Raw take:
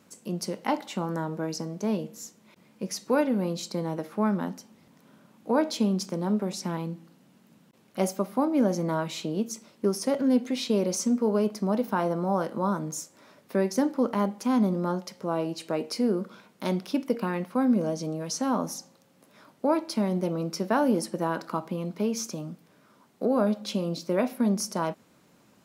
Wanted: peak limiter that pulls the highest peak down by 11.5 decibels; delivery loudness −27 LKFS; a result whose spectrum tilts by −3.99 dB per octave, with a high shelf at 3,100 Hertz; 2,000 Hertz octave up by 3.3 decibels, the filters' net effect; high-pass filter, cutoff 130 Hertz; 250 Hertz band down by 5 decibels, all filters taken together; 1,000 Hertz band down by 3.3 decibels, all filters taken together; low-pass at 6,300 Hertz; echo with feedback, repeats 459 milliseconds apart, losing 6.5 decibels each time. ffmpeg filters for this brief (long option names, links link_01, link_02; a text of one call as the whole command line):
ffmpeg -i in.wav -af "highpass=130,lowpass=6300,equalizer=frequency=250:width_type=o:gain=-5.5,equalizer=frequency=1000:width_type=o:gain=-5.5,equalizer=frequency=2000:width_type=o:gain=4,highshelf=frequency=3100:gain=8.5,alimiter=limit=-23dB:level=0:latency=1,aecho=1:1:459|918|1377|1836|2295|2754:0.473|0.222|0.105|0.0491|0.0231|0.0109,volume=6dB" out.wav